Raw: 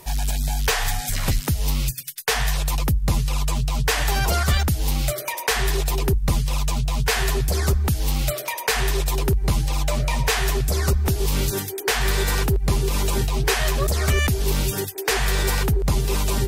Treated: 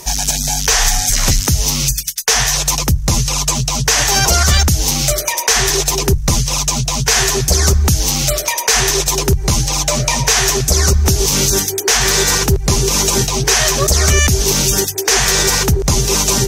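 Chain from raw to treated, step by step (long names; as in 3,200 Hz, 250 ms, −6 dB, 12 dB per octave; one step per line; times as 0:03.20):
parametric band 6,100 Hz +14 dB 0.61 octaves
mains-hum notches 50/100/150 Hz
boost into a limiter +9.5 dB
level −1 dB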